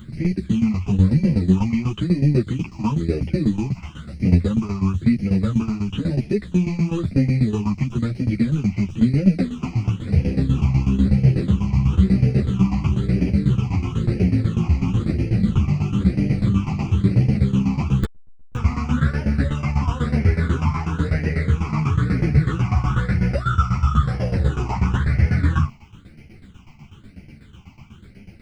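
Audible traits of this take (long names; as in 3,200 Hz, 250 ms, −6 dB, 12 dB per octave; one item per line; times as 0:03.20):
a quantiser's noise floor 12 bits, dither none
phaser sweep stages 8, 1 Hz, lowest notch 470–1,100 Hz
tremolo saw down 8.1 Hz, depth 85%
a shimmering, thickened sound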